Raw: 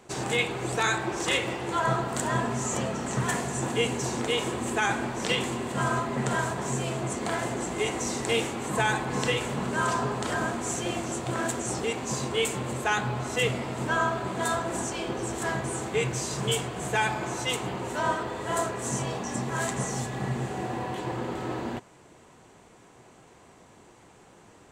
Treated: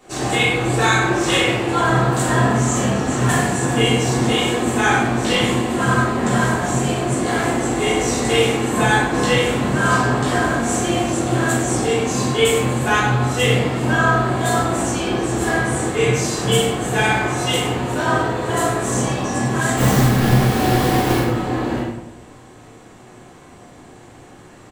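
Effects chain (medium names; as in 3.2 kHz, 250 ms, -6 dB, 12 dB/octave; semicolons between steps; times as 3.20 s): 19.77–21.19 s: square wave that keeps the level; treble shelf 9.2 kHz +4 dB; on a send: loudspeakers at several distances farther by 12 m -11 dB, 33 m -11 dB; on the sum: simulated room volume 200 m³, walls mixed, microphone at 3.4 m; trim -2 dB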